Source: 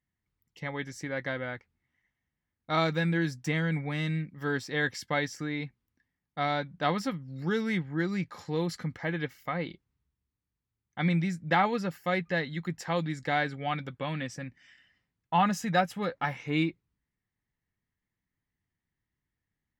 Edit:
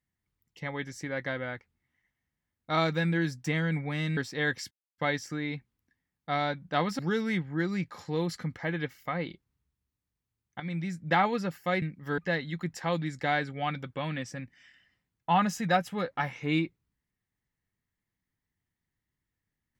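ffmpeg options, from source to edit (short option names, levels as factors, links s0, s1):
-filter_complex "[0:a]asplit=7[s0][s1][s2][s3][s4][s5][s6];[s0]atrim=end=4.172[s7];[s1]atrim=start=4.528:end=5.07,asetpts=PTS-STARTPTS,afade=t=out:st=0.538:d=0.004:c=hsin,apad=pad_dur=0.27[s8];[s2]atrim=start=5.07:end=7.082,asetpts=PTS-STARTPTS,afade=t=in:d=0.004:c=hsin[s9];[s3]atrim=start=7.388:end=11,asetpts=PTS-STARTPTS,afade=t=out:st=3.608:d=0.004:c=hsin:silence=0.199526[s10];[s4]atrim=start=11:end=12.222,asetpts=PTS-STARTPTS,afade=t=in:d=0.48:silence=0.199526[s11];[s5]atrim=start=4.168:end=4.532[s12];[s6]atrim=start=12.218[s13];[s8][s9]concat=n=2:v=0:a=1[s14];[s7][s14]acrossfade=d=0.004:c1=hsin:c2=hsin[s15];[s10][s11]concat=n=2:v=0:a=1[s16];[s15][s16]acrossfade=d=0.004:c1=hsin:c2=hsin[s17];[s17][s12]acrossfade=d=0.004:c1=hsin:c2=hsin[s18];[s18][s13]acrossfade=d=0.004:c1=hsin:c2=hsin"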